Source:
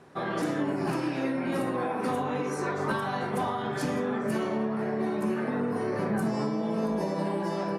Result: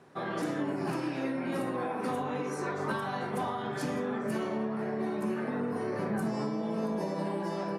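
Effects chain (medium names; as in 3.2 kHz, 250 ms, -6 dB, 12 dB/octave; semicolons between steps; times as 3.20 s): high-pass 79 Hz; trim -3.5 dB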